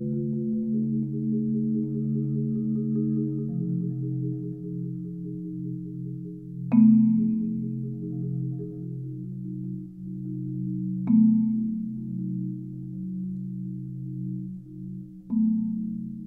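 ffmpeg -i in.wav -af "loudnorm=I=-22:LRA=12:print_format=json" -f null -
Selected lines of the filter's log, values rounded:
"input_i" : "-28.0",
"input_tp" : "-8.7",
"input_lra" : "6.3",
"input_thresh" : "-38.2",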